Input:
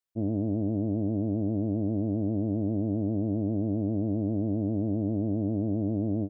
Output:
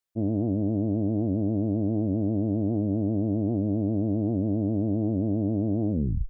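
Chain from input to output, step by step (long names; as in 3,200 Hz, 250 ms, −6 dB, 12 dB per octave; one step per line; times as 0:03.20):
turntable brake at the end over 0.38 s
wow of a warped record 78 rpm, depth 100 cents
level +2.5 dB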